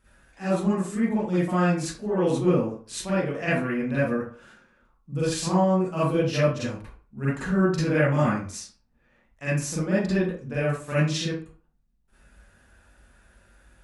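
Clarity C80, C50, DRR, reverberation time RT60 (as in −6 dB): 5.5 dB, −3.0 dB, −11.0 dB, 0.40 s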